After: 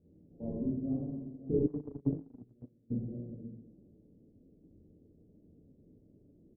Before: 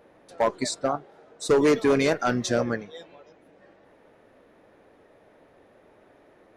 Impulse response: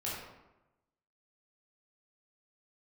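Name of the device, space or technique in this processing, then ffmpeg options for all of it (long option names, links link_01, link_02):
next room: -filter_complex "[0:a]lowpass=frequency=280:width=0.5412,lowpass=frequency=280:width=1.3066,aecho=1:1:565:0.224[link_01];[1:a]atrim=start_sample=2205[link_02];[link_01][link_02]afir=irnorm=-1:irlink=0,asplit=3[link_03][link_04][link_05];[link_03]afade=type=out:start_time=1.66:duration=0.02[link_06];[link_04]agate=range=-36dB:threshold=-23dB:ratio=16:detection=peak,afade=type=in:start_time=1.66:duration=0.02,afade=type=out:start_time=2.9:duration=0.02[link_07];[link_05]afade=type=in:start_time=2.9:duration=0.02[link_08];[link_06][link_07][link_08]amix=inputs=3:normalize=0"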